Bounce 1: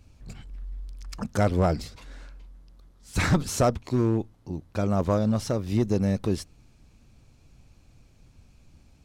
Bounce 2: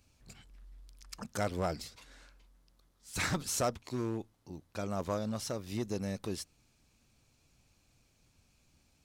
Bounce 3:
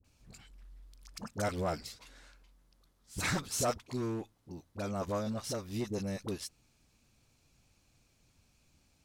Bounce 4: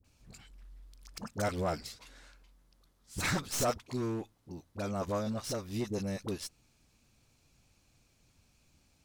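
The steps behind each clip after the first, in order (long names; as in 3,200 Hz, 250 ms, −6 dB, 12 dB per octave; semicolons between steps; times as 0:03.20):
spectral tilt +2 dB per octave; level −8 dB
all-pass dispersion highs, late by 45 ms, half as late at 690 Hz
stylus tracing distortion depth 0.041 ms; level +1 dB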